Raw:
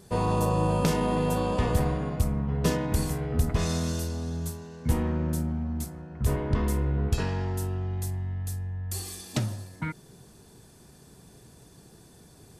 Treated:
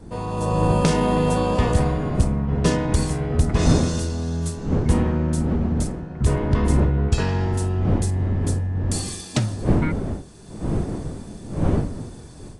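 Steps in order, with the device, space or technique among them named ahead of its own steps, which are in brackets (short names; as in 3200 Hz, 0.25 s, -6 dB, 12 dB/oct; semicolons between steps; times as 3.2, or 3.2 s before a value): smartphone video outdoors (wind noise; AGC gain up to 13 dB; gain -4 dB; AAC 64 kbps 22050 Hz)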